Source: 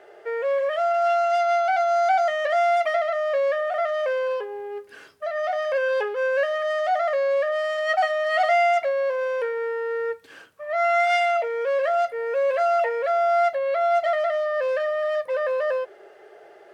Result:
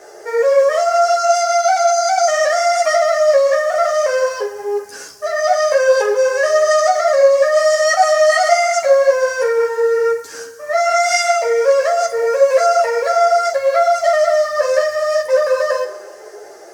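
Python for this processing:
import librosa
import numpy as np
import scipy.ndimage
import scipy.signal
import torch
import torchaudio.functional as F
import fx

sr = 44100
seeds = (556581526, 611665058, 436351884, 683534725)

p1 = fx.high_shelf_res(x, sr, hz=4300.0, db=11.5, q=3.0)
p2 = fx.over_compress(p1, sr, threshold_db=-24.0, ratio=-1.0)
p3 = p1 + (p2 * 10.0 ** (0.0 / 20.0))
p4 = fx.quant_float(p3, sr, bits=6)
p5 = p4 + fx.room_flutter(p4, sr, wall_m=7.5, rt60_s=0.22, dry=0)
p6 = fx.rev_schroeder(p5, sr, rt60_s=1.8, comb_ms=28, drr_db=12.0)
p7 = fx.ensemble(p6, sr)
y = p7 * 10.0 ** (6.0 / 20.0)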